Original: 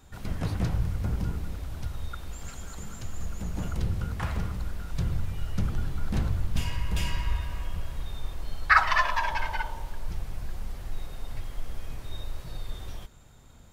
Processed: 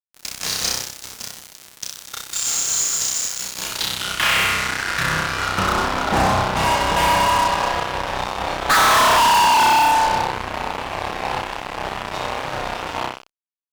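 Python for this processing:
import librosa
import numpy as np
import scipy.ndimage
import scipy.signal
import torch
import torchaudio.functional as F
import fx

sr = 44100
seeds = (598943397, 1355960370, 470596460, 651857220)

y = fx.room_flutter(x, sr, wall_m=5.4, rt60_s=1.2)
y = fx.filter_sweep_bandpass(y, sr, from_hz=6000.0, to_hz=860.0, start_s=3.23, end_s=6.05, q=2.4)
y = fx.fuzz(y, sr, gain_db=47.0, gate_db=-51.0)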